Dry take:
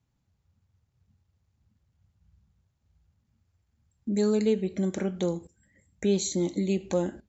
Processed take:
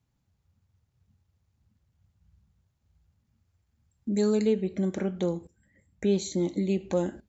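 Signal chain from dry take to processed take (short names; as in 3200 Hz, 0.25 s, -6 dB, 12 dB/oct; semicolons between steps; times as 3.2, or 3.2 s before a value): 4.47–6.97 LPF 3500 Hz 6 dB/oct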